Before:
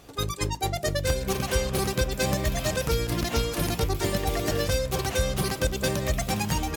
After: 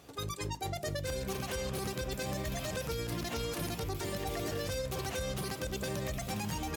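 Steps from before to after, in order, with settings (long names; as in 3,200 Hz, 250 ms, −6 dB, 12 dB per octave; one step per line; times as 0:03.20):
high-pass filter 62 Hz 12 dB per octave
brickwall limiter −22 dBFS, peak gain reduction 9.5 dB
level −5 dB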